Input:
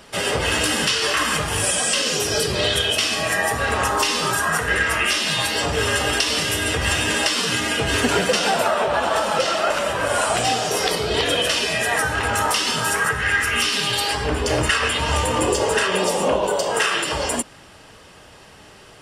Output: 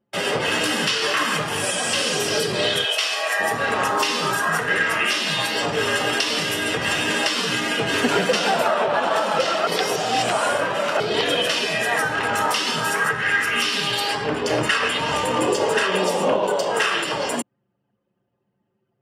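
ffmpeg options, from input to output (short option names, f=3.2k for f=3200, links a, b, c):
-filter_complex "[0:a]asplit=2[a][b];[b]afade=t=in:st=1.48:d=0.01,afade=t=out:st=2.04:d=0.01,aecho=0:1:350|700|1050|1400:0.473151|0.165603|0.057961|0.0202864[c];[a][c]amix=inputs=2:normalize=0,asplit=3[d][e][f];[d]afade=t=out:st=2.84:d=0.02[g];[e]highpass=f=510:w=0.5412,highpass=f=510:w=1.3066,afade=t=in:st=2.84:d=0.02,afade=t=out:st=3.39:d=0.02[h];[f]afade=t=in:st=3.39:d=0.02[i];[g][h][i]amix=inputs=3:normalize=0,asplit=3[j][k][l];[j]atrim=end=9.672[m];[k]atrim=start=9.668:end=11.002,asetpts=PTS-STARTPTS,areverse[n];[l]atrim=start=10.998[o];[m][n]acrossfade=d=0.004:c1=hsin:c2=hsin[p];[p][o]acrossfade=d=0.004:c1=hsin:c2=hsin,anlmdn=39.8,highpass=f=130:w=0.5412,highpass=f=130:w=1.3066,equalizer=f=9.2k:w=0.78:g=-6.5"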